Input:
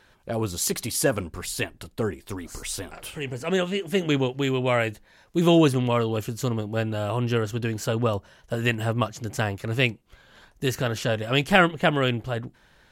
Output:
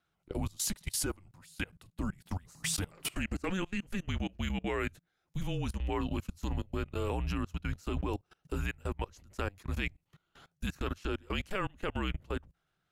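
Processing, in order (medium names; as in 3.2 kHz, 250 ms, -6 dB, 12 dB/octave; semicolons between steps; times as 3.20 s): recorder AGC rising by 8.8 dB/s; frequency shift -190 Hz; level held to a coarse grid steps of 24 dB; 5.43–6.01 s: three bands expanded up and down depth 70%; trim -8.5 dB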